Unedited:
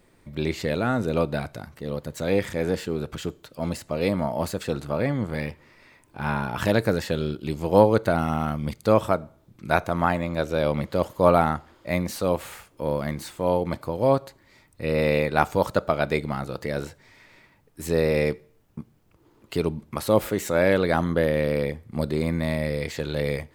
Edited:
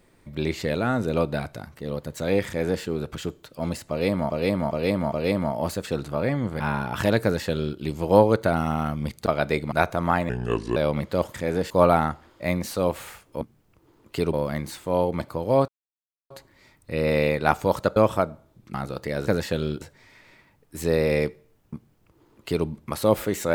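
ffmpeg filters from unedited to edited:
-filter_complex "[0:a]asplit=18[a][b][c][d][e][f][g][h][i][j][k][l][m][n][o][p][q][r];[a]atrim=end=4.302[s];[b]atrim=start=3.888:end=4.302[t];[c]atrim=start=3.888:end=4.302[u];[d]atrim=start=3.888:end=5.372[v];[e]atrim=start=6.218:end=8.882[w];[f]atrim=start=15.868:end=16.332[x];[g]atrim=start=9.658:end=10.234[y];[h]atrim=start=10.23:end=10.57,asetpts=PTS-STARTPTS,asetrate=31752,aresample=44100[z];[i]atrim=start=10.566:end=11.152[aa];[j]atrim=start=2.468:end=2.832[ab];[k]atrim=start=11.148:end=12.862[ac];[l]atrim=start=18.788:end=19.712[ad];[m]atrim=start=12.858:end=14.21,asetpts=PTS-STARTPTS,afade=t=out:st=1.348:d=0.004:c=hsin,apad=pad_dur=0.62[ae];[n]atrim=start=14.21:end=15.872,asetpts=PTS-STARTPTS,afade=t=in:d=0.004:c=hsin[af];[o]atrim=start=8.878:end=9.662[ag];[p]atrim=start=16.328:end=16.862[ah];[q]atrim=start=6.858:end=7.402[ai];[r]atrim=start=16.858[aj];[s][t]acrossfade=d=0.004:c1=hsin:c2=hsin[ak];[ak][u]acrossfade=d=0.004:c1=hsin:c2=hsin[al];[al][v]acrossfade=d=0.004:c1=hsin:c2=hsin[am];[am][w]acrossfade=d=0.004:c1=hsin:c2=hsin[an];[an][x]acrossfade=d=0.004:c1=hsin:c2=hsin[ao];[ao][y]acrossfade=d=0.004:c1=hsin:c2=hsin[ap];[ap][z]acrossfade=d=0.004:c1=hsin:c2=hsin[aq];[aq][aa]acrossfade=d=0.004:c1=hsin:c2=hsin[ar];[ar][ab]acrossfade=d=0.004:c1=hsin:c2=hsin[as];[as][ac]acrossfade=d=0.004:c1=hsin:c2=hsin[at];[at][ad]acrossfade=d=0.004:c1=hsin:c2=hsin[au];[ae][af]concat=n=2:v=0:a=1[av];[au][av]acrossfade=d=0.004:c1=hsin:c2=hsin[aw];[aw][ag]acrossfade=d=0.004:c1=hsin:c2=hsin[ax];[ax][ah]acrossfade=d=0.004:c1=hsin:c2=hsin[ay];[ay][ai]acrossfade=d=0.004:c1=hsin:c2=hsin[az];[az][aj]acrossfade=d=0.004:c1=hsin:c2=hsin"

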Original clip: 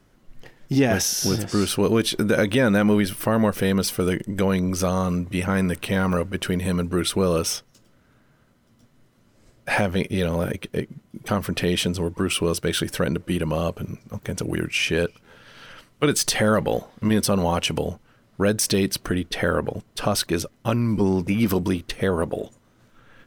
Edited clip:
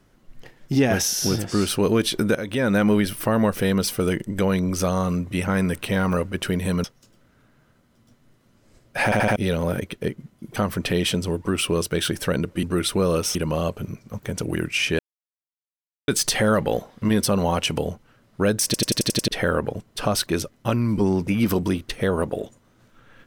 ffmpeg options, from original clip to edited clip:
-filter_complex "[0:a]asplit=18[a][b][c][d][e][f][g][h][i][j][k][l][m][n][o][p][q][r];[a]atrim=end=2.35,asetpts=PTS-STARTPTS,afade=t=out:st=2.346:d=0.004:c=hsin:silence=0.199526[s];[b]atrim=start=2.35:end=6.842,asetpts=PTS-STARTPTS,afade=t=in:d=0.44:silence=0.199526[t];[c]atrim=start=7.558:end=9.842[u];[d]atrim=start=9.758:end=9.842[v];[e]atrim=start=9.758:end=9.842[w];[f]atrim=start=9.758:end=9.842[x];[g]atrim=start=10.078:end=13.352[y];[h]atrim=start=6.838:end=7.562[z];[i]atrim=start=13.348:end=14.99,asetpts=PTS-STARTPTS,afade=t=out:st=1.638:d=0.004:c=hsin[aa];[j]atrim=start=14.99:end=16.08,asetpts=PTS-STARTPTS,volume=0[ab];[k]atrim=start=16.08:end=18.742,asetpts=PTS-STARTPTS,afade=t=in:d=0.004:c=hsin[ac];[l]atrim=start=18.648:end=18.742[ad];[m]atrim=start=18.648:end=18.742[ae];[n]atrim=start=18.648:end=18.742[af];[o]atrim=start=18.648:end=18.742[ag];[p]atrim=start=18.648:end=18.742[ah];[q]atrim=start=18.648:end=18.742[ai];[r]atrim=start=19.278[aj];[s][t]concat=n=2:v=0:a=1[ak];[ak][u]acrossfade=d=0.004:c1=hsin:c2=hsin[al];[al][v]acrossfade=d=0.004:c1=hsin:c2=hsin[am];[am][w]acrossfade=d=0.004:c1=hsin:c2=hsin[an];[an][x]acrossfade=d=0.004:c1=hsin:c2=hsin[ao];[ao][y]acrossfade=d=0.004:c1=hsin:c2=hsin[ap];[ap][z]acrossfade=d=0.004:c1=hsin:c2=hsin[aq];[aa][ab][ac]concat=n=3:v=0:a=1[ar];[aq][ar]acrossfade=d=0.004:c1=hsin:c2=hsin[as];[as][ad]acrossfade=d=0.004:c1=hsin:c2=hsin[at];[at][ae]acrossfade=d=0.004:c1=hsin:c2=hsin[au];[au][af]acrossfade=d=0.004:c1=hsin:c2=hsin[av];[av][ag]acrossfade=d=0.004:c1=hsin:c2=hsin[aw];[aw][ah]acrossfade=d=0.004:c1=hsin:c2=hsin[ax];[ax][ai]acrossfade=d=0.004:c1=hsin:c2=hsin[ay];[ay][aj]acrossfade=d=0.004:c1=hsin:c2=hsin"

